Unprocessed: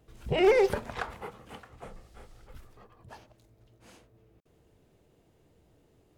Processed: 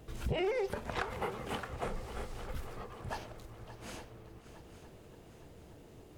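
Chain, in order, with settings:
downward compressor 8 to 1, threshold −41 dBFS, peak gain reduction 22 dB
echo machine with several playback heads 287 ms, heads second and third, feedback 55%, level −15 dB
level +9 dB

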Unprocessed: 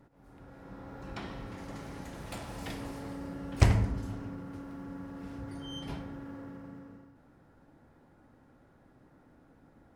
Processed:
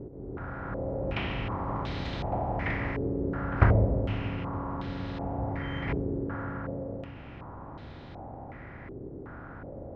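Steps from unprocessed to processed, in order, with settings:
compressor on every frequency bin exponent 0.6
high-frequency loss of the air 83 metres
low-pass on a step sequencer 2.7 Hz 410–3,800 Hz

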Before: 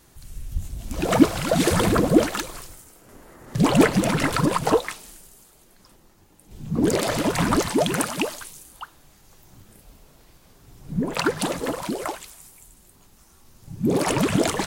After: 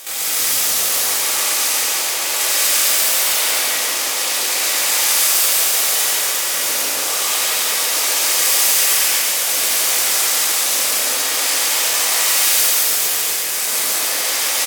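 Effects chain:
compressor on every frequency bin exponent 0.4
noise gate with hold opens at −16 dBFS
compressor whose output falls as the input rises −19 dBFS, ratio −0.5
brickwall limiter −12 dBFS, peak gain reduction 11 dB
leveller curve on the samples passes 5
resonant band-pass 5,500 Hz, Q 1
pitch shifter +10.5 semitones
loudspeakers that aren't time-aligned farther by 48 metres −2 dB, 89 metres −10 dB
reverb whose tail is shaped and stops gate 420 ms flat, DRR −8 dB
highs frequency-modulated by the lows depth 0.11 ms

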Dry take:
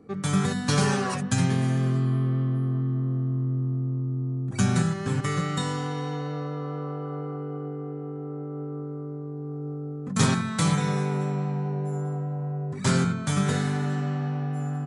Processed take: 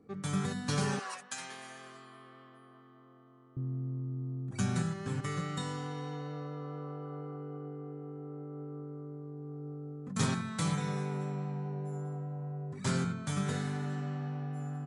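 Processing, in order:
0:00.99–0:03.57: high-pass filter 790 Hz 12 dB per octave
level −9 dB

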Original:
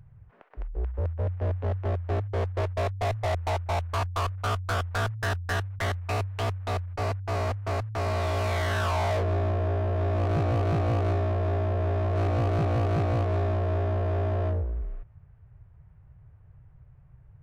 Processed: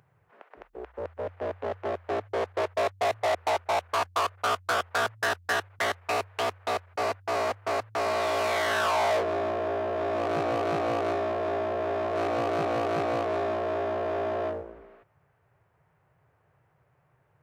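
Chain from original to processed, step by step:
high-pass filter 350 Hz 12 dB per octave
level +4 dB

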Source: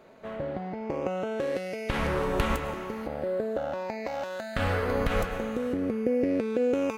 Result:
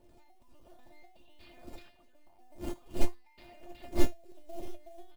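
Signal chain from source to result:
wind on the microphone 220 Hz −25 dBFS
reverb reduction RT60 1.3 s
linear-prediction vocoder at 8 kHz pitch kept
wrong playback speed 33 rpm record played at 45 rpm
parametric band 1,500 Hz −11 dB 1.1 octaves
comb filter 3.3 ms, depth 46%
log-companded quantiser 6 bits
tilt shelving filter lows −4 dB, about 760 Hz
tuned comb filter 350 Hz, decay 0.35 s, harmonics all, mix 90%
expander for the loud parts 2.5 to 1, over −37 dBFS
level +11 dB

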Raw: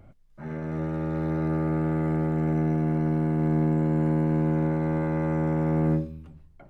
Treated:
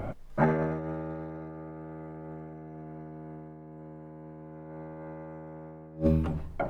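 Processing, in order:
parametric band 700 Hz +9.5 dB 2.7 octaves
compressor whose output falls as the input rises −32 dBFS, ratio −0.5

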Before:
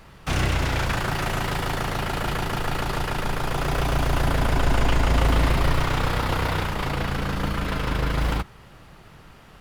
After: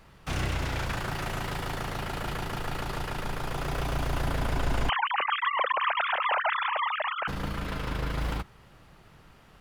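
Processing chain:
0:04.89–0:07.28: three sine waves on the formant tracks
level −7 dB

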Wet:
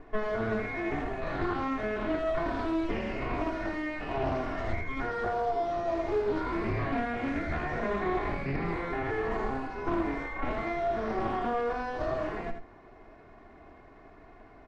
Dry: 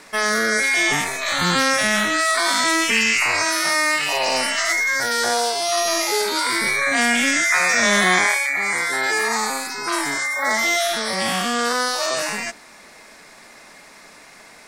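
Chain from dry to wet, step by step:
lower of the sound and its delayed copy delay 2.8 ms
downward compressor, threshold −21 dBFS, peak gain reduction 7 dB
Bessel low-pass filter 680 Hz, order 2
low-shelf EQ 110 Hz +10 dB
mains-hum notches 60/120/180/240 Hz
single-tap delay 82 ms −8 dB
highs frequency-modulated by the lows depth 0.31 ms

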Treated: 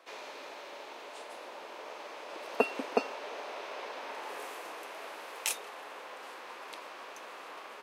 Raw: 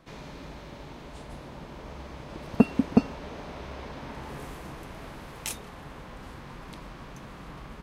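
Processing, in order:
high-pass filter 430 Hz 24 dB per octave
parametric band 2,600 Hz +3.5 dB 0.27 octaves
level +1.5 dB

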